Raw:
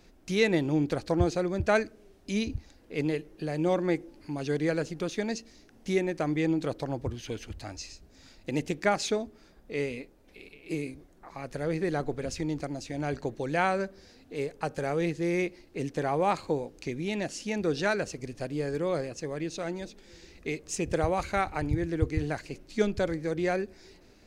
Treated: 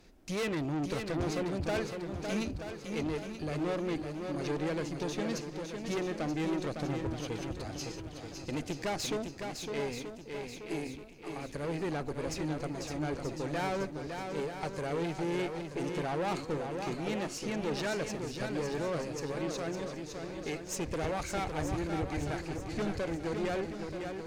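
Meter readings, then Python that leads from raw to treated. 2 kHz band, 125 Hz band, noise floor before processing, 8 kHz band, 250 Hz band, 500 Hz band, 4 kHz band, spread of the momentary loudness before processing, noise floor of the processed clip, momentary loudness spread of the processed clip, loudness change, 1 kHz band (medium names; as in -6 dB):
-5.5 dB, -4.0 dB, -58 dBFS, -1.5 dB, -4.0 dB, -5.0 dB, -1.5 dB, 13 LU, -45 dBFS, 6 LU, -5.0 dB, -4.5 dB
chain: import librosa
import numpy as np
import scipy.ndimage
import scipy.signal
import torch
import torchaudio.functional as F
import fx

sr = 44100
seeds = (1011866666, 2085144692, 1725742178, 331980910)

y = fx.tube_stage(x, sr, drive_db=30.0, bias=0.45)
y = fx.echo_swing(y, sr, ms=930, ratio=1.5, feedback_pct=41, wet_db=-6.0)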